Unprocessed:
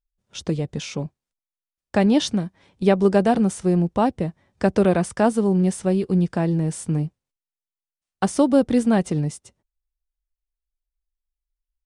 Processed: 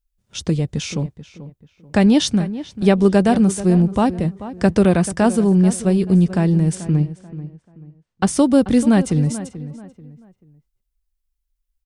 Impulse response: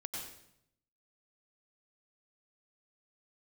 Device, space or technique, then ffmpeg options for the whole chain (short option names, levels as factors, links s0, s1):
smiley-face EQ: -filter_complex "[0:a]lowshelf=f=140:g=5,equalizer=f=650:t=o:w=2.1:g=-4.5,highshelf=f=8500:g=4.5,asettb=1/sr,asplit=3[s0][s1][s2];[s0]atrim=end=6.754[s3];[s1]atrim=start=6.75:end=8.27,asetpts=PTS-STARTPTS,afade=t=in:d=0.004:c=qsin,afade=t=out:st=1.516:d=0.004:c=qsin,lowpass=5100[s4];[s2]atrim=start=8.266[s5];[s3][s4]acrossfade=d=0.004:c1=hsin:c2=qsin[s6];[s6][s5]acrossfade=d=0.004:c1=qsin:c2=hsin,asplit=2[s7][s8];[s8]adelay=436,lowpass=f=2400:p=1,volume=0.2,asplit=2[s9][s10];[s10]adelay=436,lowpass=f=2400:p=1,volume=0.32,asplit=2[s11][s12];[s12]adelay=436,lowpass=f=2400:p=1,volume=0.32[s13];[s7][s9][s11][s13]amix=inputs=4:normalize=0,volume=1.68"